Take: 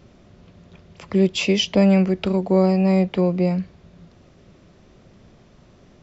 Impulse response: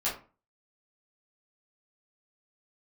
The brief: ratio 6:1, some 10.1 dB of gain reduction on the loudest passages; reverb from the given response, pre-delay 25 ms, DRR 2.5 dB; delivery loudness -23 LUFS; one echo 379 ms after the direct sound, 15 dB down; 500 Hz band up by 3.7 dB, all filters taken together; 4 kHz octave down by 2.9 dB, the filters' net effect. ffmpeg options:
-filter_complex "[0:a]equalizer=f=500:t=o:g=5,equalizer=f=4000:t=o:g=-4.5,acompressor=threshold=0.1:ratio=6,aecho=1:1:379:0.178,asplit=2[s0][s1];[1:a]atrim=start_sample=2205,adelay=25[s2];[s1][s2]afir=irnorm=-1:irlink=0,volume=0.316[s3];[s0][s3]amix=inputs=2:normalize=0,volume=1.06"

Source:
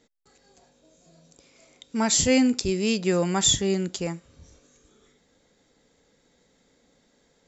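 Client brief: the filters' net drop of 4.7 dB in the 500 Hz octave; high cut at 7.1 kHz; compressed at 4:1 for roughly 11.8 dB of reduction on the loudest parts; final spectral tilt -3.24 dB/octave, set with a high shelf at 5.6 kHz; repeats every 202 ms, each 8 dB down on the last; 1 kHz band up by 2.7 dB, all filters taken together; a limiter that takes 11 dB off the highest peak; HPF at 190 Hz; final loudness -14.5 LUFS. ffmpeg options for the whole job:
-af "highpass=190,lowpass=7100,equalizer=f=500:t=o:g=-7,equalizer=f=1000:t=o:g=5.5,highshelf=f=5600:g=8.5,acompressor=threshold=0.0398:ratio=4,alimiter=limit=0.0794:level=0:latency=1,aecho=1:1:202|404|606|808|1010:0.398|0.159|0.0637|0.0255|0.0102,volume=7.5"

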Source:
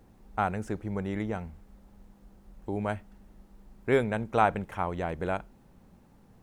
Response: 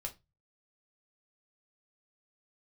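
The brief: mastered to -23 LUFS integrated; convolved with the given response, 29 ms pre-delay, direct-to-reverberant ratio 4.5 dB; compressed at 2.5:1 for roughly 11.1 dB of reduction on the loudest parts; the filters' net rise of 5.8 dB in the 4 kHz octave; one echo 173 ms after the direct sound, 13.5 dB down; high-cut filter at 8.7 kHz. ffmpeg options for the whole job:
-filter_complex "[0:a]lowpass=8700,equalizer=f=4000:t=o:g=7.5,acompressor=threshold=0.0178:ratio=2.5,aecho=1:1:173:0.211,asplit=2[s0][s1];[1:a]atrim=start_sample=2205,adelay=29[s2];[s1][s2]afir=irnorm=-1:irlink=0,volume=0.708[s3];[s0][s3]amix=inputs=2:normalize=0,volume=5.01"

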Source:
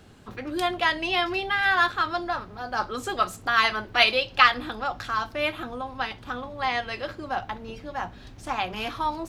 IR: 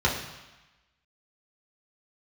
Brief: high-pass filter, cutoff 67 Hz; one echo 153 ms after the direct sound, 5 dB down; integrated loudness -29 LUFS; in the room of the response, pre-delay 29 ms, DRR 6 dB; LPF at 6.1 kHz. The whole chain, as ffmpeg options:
-filter_complex "[0:a]highpass=67,lowpass=6100,aecho=1:1:153:0.562,asplit=2[s0][s1];[1:a]atrim=start_sample=2205,adelay=29[s2];[s1][s2]afir=irnorm=-1:irlink=0,volume=0.1[s3];[s0][s3]amix=inputs=2:normalize=0,volume=0.531"

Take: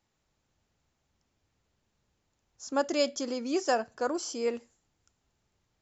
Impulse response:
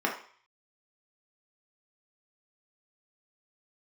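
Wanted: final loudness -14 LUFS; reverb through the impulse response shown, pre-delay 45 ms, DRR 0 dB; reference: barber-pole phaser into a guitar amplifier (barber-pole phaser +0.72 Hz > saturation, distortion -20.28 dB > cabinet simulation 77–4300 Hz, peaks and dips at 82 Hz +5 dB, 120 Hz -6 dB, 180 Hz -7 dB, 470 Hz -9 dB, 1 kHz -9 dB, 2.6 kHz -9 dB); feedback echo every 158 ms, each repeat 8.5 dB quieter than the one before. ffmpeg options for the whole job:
-filter_complex "[0:a]aecho=1:1:158|316|474|632:0.376|0.143|0.0543|0.0206,asplit=2[s0][s1];[1:a]atrim=start_sample=2205,adelay=45[s2];[s1][s2]afir=irnorm=-1:irlink=0,volume=0.282[s3];[s0][s3]amix=inputs=2:normalize=0,asplit=2[s4][s5];[s5]afreqshift=0.72[s6];[s4][s6]amix=inputs=2:normalize=1,asoftclip=threshold=0.0944,highpass=77,equalizer=f=82:t=q:w=4:g=5,equalizer=f=120:t=q:w=4:g=-6,equalizer=f=180:t=q:w=4:g=-7,equalizer=f=470:t=q:w=4:g=-9,equalizer=f=1000:t=q:w=4:g=-9,equalizer=f=2600:t=q:w=4:g=-9,lowpass=f=4300:w=0.5412,lowpass=f=4300:w=1.3066,volume=12.6"

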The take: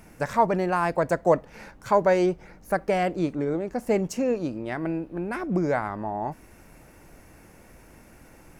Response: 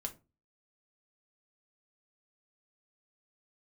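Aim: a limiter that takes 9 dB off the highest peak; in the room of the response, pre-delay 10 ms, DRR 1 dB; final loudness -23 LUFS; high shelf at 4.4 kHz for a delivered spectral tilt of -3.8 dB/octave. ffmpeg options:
-filter_complex "[0:a]highshelf=f=4400:g=5,alimiter=limit=0.15:level=0:latency=1,asplit=2[s0][s1];[1:a]atrim=start_sample=2205,adelay=10[s2];[s1][s2]afir=irnorm=-1:irlink=0,volume=1.06[s3];[s0][s3]amix=inputs=2:normalize=0,volume=1.41"

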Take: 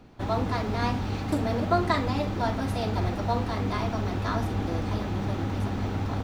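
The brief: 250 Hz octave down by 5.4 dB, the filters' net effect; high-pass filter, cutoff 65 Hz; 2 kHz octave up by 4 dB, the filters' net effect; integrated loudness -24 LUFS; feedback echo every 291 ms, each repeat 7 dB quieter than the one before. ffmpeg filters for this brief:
-af "highpass=65,equalizer=f=250:t=o:g=-7,equalizer=f=2000:t=o:g=5,aecho=1:1:291|582|873|1164|1455:0.447|0.201|0.0905|0.0407|0.0183,volume=1.58"

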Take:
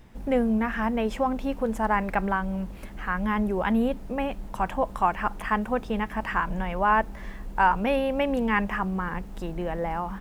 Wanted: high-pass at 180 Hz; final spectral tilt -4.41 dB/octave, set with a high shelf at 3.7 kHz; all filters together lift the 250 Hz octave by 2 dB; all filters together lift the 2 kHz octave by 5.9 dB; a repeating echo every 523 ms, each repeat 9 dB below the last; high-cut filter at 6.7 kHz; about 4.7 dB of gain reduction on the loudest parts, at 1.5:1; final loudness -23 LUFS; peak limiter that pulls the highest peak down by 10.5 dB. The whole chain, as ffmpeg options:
-af "highpass=180,lowpass=6700,equalizer=f=250:t=o:g=4,equalizer=f=2000:t=o:g=6,highshelf=f=3700:g=7,acompressor=threshold=0.0447:ratio=1.5,alimiter=limit=0.0944:level=0:latency=1,aecho=1:1:523|1046|1569|2092:0.355|0.124|0.0435|0.0152,volume=2.24"

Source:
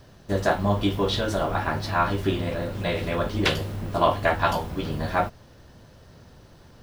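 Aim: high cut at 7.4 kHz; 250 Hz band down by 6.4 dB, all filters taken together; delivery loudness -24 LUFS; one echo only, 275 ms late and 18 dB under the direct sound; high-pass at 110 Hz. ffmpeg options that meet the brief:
-af "highpass=110,lowpass=7400,equalizer=f=250:t=o:g=-9,aecho=1:1:275:0.126,volume=1.41"

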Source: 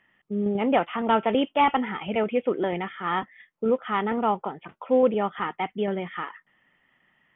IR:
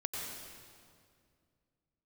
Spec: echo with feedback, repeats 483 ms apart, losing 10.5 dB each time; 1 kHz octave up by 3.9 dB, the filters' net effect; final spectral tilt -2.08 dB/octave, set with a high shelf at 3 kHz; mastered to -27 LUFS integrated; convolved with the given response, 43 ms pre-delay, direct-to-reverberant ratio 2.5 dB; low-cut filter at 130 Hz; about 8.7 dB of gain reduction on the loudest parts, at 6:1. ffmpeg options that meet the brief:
-filter_complex "[0:a]highpass=130,equalizer=f=1000:t=o:g=5.5,highshelf=f=3000:g=-5.5,acompressor=threshold=0.0794:ratio=6,aecho=1:1:483|966|1449:0.299|0.0896|0.0269,asplit=2[s0][s1];[1:a]atrim=start_sample=2205,adelay=43[s2];[s1][s2]afir=irnorm=-1:irlink=0,volume=0.562[s3];[s0][s3]amix=inputs=2:normalize=0,volume=0.891"

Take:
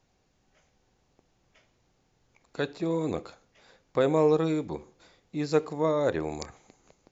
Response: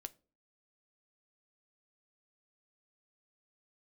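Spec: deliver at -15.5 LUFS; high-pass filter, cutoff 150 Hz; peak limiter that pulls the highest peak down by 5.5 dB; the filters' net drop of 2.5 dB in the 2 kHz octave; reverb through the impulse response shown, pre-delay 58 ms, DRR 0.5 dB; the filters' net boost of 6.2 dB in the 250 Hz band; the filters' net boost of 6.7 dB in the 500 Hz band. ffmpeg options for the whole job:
-filter_complex "[0:a]highpass=150,equalizer=f=250:t=o:g=6.5,equalizer=f=500:t=o:g=6,equalizer=f=2000:t=o:g=-4,alimiter=limit=0.282:level=0:latency=1,asplit=2[s0][s1];[1:a]atrim=start_sample=2205,adelay=58[s2];[s1][s2]afir=irnorm=-1:irlink=0,volume=1.58[s3];[s0][s3]amix=inputs=2:normalize=0,volume=2"

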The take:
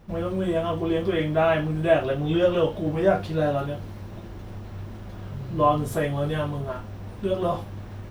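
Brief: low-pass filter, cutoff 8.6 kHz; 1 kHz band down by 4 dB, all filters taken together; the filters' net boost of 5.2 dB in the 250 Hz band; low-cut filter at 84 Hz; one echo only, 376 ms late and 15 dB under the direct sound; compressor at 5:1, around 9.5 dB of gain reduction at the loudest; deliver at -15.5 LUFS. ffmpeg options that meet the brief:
-af "highpass=84,lowpass=8600,equalizer=f=250:t=o:g=9,equalizer=f=1000:t=o:g=-6.5,acompressor=threshold=0.0562:ratio=5,aecho=1:1:376:0.178,volume=5.31"

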